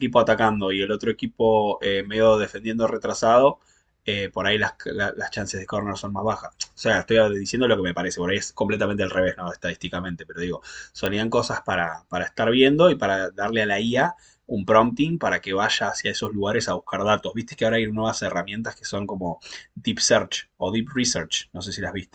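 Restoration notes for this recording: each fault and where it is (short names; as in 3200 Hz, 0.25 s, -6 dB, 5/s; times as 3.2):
11.06 pop -10 dBFS
16.25 pop -18 dBFS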